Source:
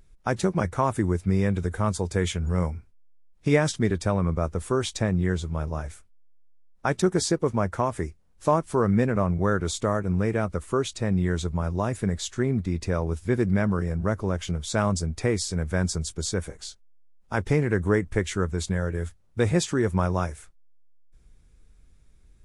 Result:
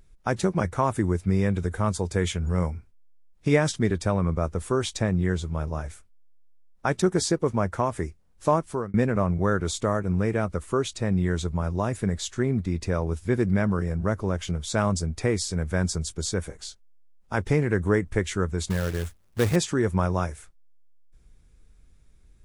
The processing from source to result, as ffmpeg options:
-filter_complex "[0:a]asettb=1/sr,asplit=3[a][b][c];[a]atrim=end=18.704[d];[b]atrim=start=18.7:end=19.56,asetpts=PTS-STARTPTS,afade=t=in:d=0.004:c=qsin,afade=t=out:st=0.856:d=0.004:c=qsin,acrusher=bits=3:mode=log:mix=0:aa=0.000001[e];[c]atrim=start=19.556[f];[d][e]acrossfade=d=0.004:c1=hsin:c2=qsin[g];[g][f]acrossfade=d=0.004:c1=qsin:c2=hsin,asplit=2[h][i];[h]atrim=end=8.94,asetpts=PTS-STARTPTS,afade=t=out:st=8.48:d=0.46:c=qsin[j];[i]atrim=start=8.94,asetpts=PTS-STARTPTS,afade=t=in:d=0.004:c=hsin[k];[j][k]concat=n=2:v=0:a=1"

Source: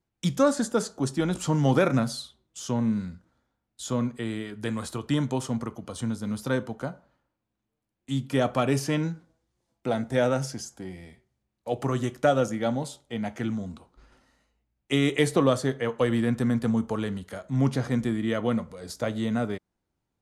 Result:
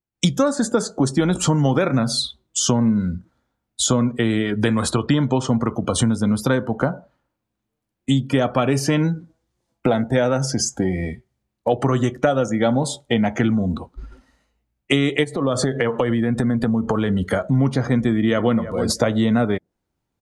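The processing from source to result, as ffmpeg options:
-filter_complex "[0:a]asettb=1/sr,asplit=3[a][b][c];[a]atrim=end=4.904[d];[b]atrim=start=4.9:end=5.48,asetpts=PTS-STARTPTS,afade=t=in:d=0.004:c=qsin,afade=t=out:st=0.576:d=0.004:c=qsin,lowpass=6.3k[e];[c]atrim=start=5.476[f];[d][e]acrossfade=d=0.004:c1=hsin:c2=qsin[g];[g][f]acrossfade=d=0.004:c1=qsin:c2=hsin,asplit=3[h][i][j];[h]afade=t=out:st=15.23:d=0.02[k];[i]acompressor=threshold=-33dB:ratio=4:attack=3.2:release=140:knee=1:detection=peak,afade=t=in:st=15.23:d=0.02,afade=t=out:st=17.21:d=0.02[l];[j]afade=t=in:st=17.21:d=0.02[m];[k][l][m]amix=inputs=3:normalize=0,asplit=2[n][o];[o]afade=t=in:st=17.97:d=0.01,afade=t=out:st=18.6:d=0.01,aecho=0:1:320|640:0.149624|0.0224435[p];[n][p]amix=inputs=2:normalize=0,dynaudnorm=f=120:g=3:m=14.5dB,afftdn=nr=18:nf=-35,acompressor=threshold=-24dB:ratio=4,volume=7dB"

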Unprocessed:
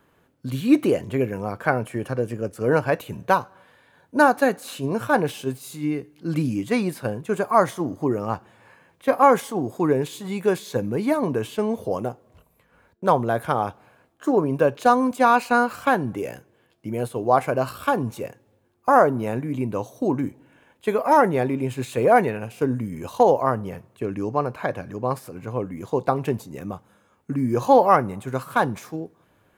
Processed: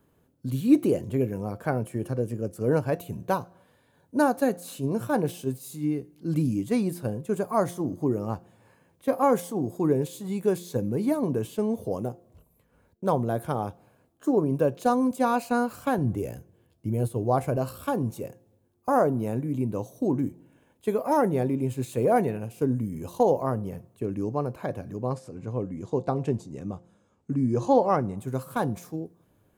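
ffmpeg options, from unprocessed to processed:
-filter_complex "[0:a]asettb=1/sr,asplit=3[a][b][c];[a]atrim=end=15.984[d];[b]atrim=start=15.98:end=17.57,asetpts=PTS-STARTPTS,afade=t=in:d=0.004:c=qsin,afade=t=out:st=1.586:d=0.004:c=qsin,equalizer=f=76:t=o:w=1.3:g=11.5[e];[c]atrim=start=17.566[f];[d][e]acrossfade=d=0.004:c1=hsin:c2=qsin[g];[g][f]acrossfade=d=0.004:c1=qsin:c2=hsin,asettb=1/sr,asplit=3[h][i][j];[h]atrim=end=25.094[k];[i]atrim=start=25.09:end=28.18,asetpts=PTS-STARTPTS,afade=t=in:d=0.004:c=qsin,afade=t=out:st=3.086:d=0.004:c=qsin,lowpass=f=8.1k:w=0.5412,lowpass=f=8.1k:w=1.3066[l];[j]atrim=start=28.176[m];[k][l]acrossfade=d=0.004:c1=hsin:c2=qsin[n];[n][m]acrossfade=d=0.004:c1=qsin:c2=hsin,equalizer=f=1.8k:w=0.4:g=-12,bandreject=f=174.9:t=h:w=4,bandreject=f=349.8:t=h:w=4,bandreject=f=524.7:t=h:w=4,bandreject=f=699.6:t=h:w=4"

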